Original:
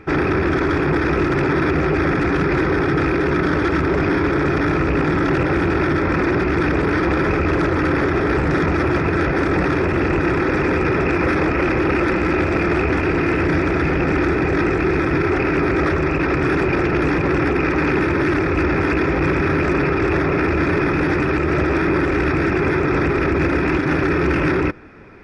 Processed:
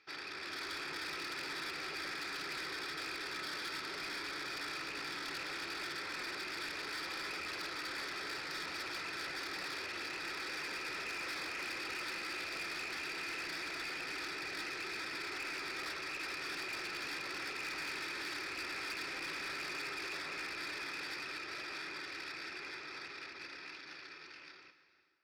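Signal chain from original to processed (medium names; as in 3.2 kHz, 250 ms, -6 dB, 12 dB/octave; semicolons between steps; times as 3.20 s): fade out at the end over 5.46 s; band-pass filter 4.5 kHz, Q 4.2; plate-style reverb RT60 3.4 s, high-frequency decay 0.8×, DRR 10.5 dB; level rider gain up to 6 dB; saturation -36 dBFS, distortion -11 dB; trim -1 dB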